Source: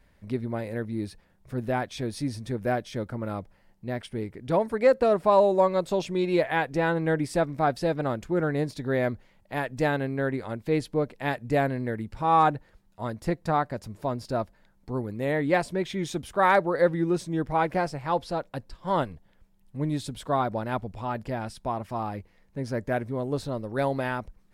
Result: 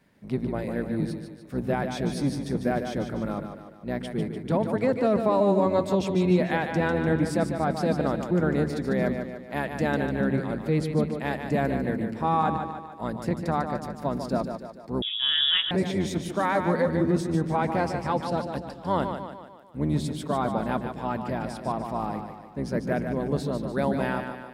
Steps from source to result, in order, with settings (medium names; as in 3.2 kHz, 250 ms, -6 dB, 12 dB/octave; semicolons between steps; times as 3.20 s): octave divider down 1 oct, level +3 dB; resonant low shelf 120 Hz -10 dB, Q 1.5; peak limiter -15.5 dBFS, peak gain reduction 8 dB; high-pass 57 Hz; on a send: two-band feedback delay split 310 Hz, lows 104 ms, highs 148 ms, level -7 dB; 15.02–15.71 s: on the sum: frequency inversion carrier 3.6 kHz